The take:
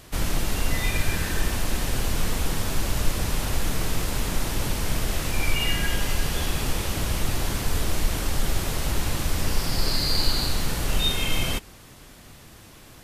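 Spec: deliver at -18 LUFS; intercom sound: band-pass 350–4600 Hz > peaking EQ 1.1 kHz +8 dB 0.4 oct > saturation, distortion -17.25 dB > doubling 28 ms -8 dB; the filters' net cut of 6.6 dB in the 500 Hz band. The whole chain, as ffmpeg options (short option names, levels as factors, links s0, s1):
-filter_complex "[0:a]highpass=350,lowpass=4600,equalizer=f=500:t=o:g=-7.5,equalizer=f=1100:t=o:w=0.4:g=8,asoftclip=threshold=0.0562,asplit=2[s0][s1];[s1]adelay=28,volume=0.398[s2];[s0][s2]amix=inputs=2:normalize=0,volume=4.73"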